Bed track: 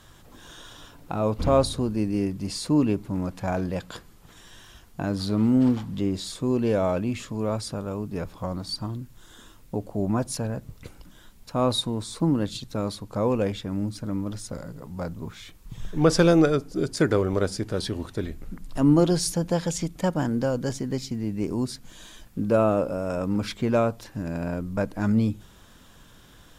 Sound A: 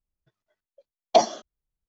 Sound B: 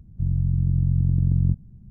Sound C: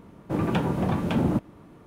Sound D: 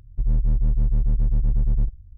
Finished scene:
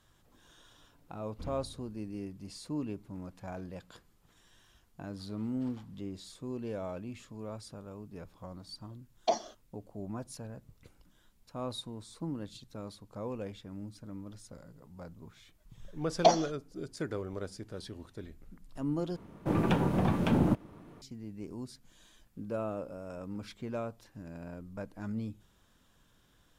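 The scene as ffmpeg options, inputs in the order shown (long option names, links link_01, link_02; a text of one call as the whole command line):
ffmpeg -i bed.wav -i cue0.wav -i cue1.wav -i cue2.wav -filter_complex "[1:a]asplit=2[link_01][link_02];[0:a]volume=-15dB[link_03];[3:a]aeval=exprs='if(lt(val(0),0),0.708*val(0),val(0))':channel_layout=same[link_04];[link_03]asplit=2[link_05][link_06];[link_05]atrim=end=19.164[link_07];[link_04]atrim=end=1.86,asetpts=PTS-STARTPTS,volume=-1.5dB[link_08];[link_06]atrim=start=21.016[link_09];[link_01]atrim=end=1.88,asetpts=PTS-STARTPTS,volume=-11.5dB,afade=type=in:duration=0.004:curve=hsin,afade=type=out:start_time=1.876:duration=0.004:curve=hsin,adelay=8130[link_10];[link_02]atrim=end=1.88,asetpts=PTS-STARTPTS,volume=-5dB,afade=type=in:duration=0.004:curve=hsin,afade=type=out:start_time=1.876:duration=0.004:curve=hsin,adelay=15100[link_11];[link_07][link_08]acrossfade=duration=0.004:curve1=hsin:curve2=hsin[link_12];[link_12][link_09]acrossfade=duration=0.004:curve1=hsin:curve2=hsin[link_13];[link_13][link_10][link_11]amix=inputs=3:normalize=0" out.wav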